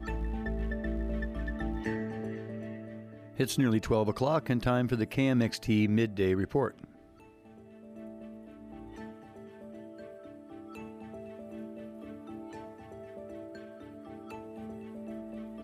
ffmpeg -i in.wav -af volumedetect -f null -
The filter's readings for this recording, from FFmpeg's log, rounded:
mean_volume: -33.7 dB
max_volume: -15.9 dB